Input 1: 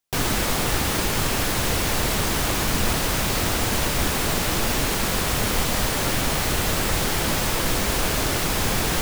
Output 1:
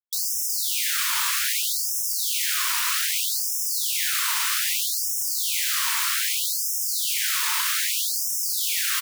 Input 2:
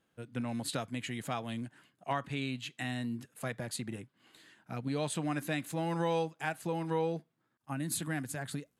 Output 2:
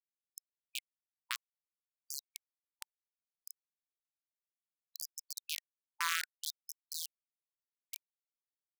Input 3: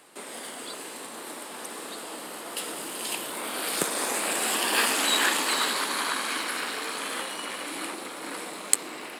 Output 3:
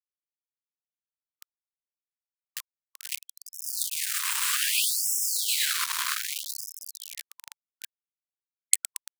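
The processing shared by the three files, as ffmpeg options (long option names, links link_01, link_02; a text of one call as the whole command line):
ffmpeg -i in.wav -filter_complex "[0:a]asplit=8[link_01][link_02][link_03][link_04][link_05][link_06][link_07][link_08];[link_02]adelay=114,afreqshift=120,volume=-13.5dB[link_09];[link_03]adelay=228,afreqshift=240,volume=-17.7dB[link_10];[link_04]adelay=342,afreqshift=360,volume=-21.8dB[link_11];[link_05]adelay=456,afreqshift=480,volume=-26dB[link_12];[link_06]adelay=570,afreqshift=600,volume=-30.1dB[link_13];[link_07]adelay=684,afreqshift=720,volume=-34.3dB[link_14];[link_08]adelay=798,afreqshift=840,volume=-38.4dB[link_15];[link_01][link_09][link_10][link_11][link_12][link_13][link_14][link_15]amix=inputs=8:normalize=0,acrusher=bits=3:mix=0:aa=0.000001,afftfilt=real='re*gte(b*sr/1024,880*pow(5200/880,0.5+0.5*sin(2*PI*0.63*pts/sr)))':imag='im*gte(b*sr/1024,880*pow(5200/880,0.5+0.5*sin(2*PI*0.63*pts/sr)))':win_size=1024:overlap=0.75" out.wav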